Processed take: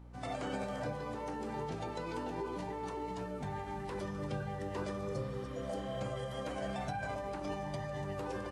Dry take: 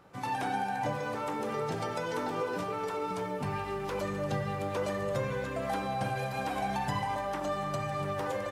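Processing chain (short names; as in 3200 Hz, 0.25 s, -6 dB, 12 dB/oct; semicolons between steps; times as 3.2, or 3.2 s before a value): formant shift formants -4 st; hum 60 Hz, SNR 13 dB; spectral repair 5.04–5.94, 900–4200 Hz both; gain -6 dB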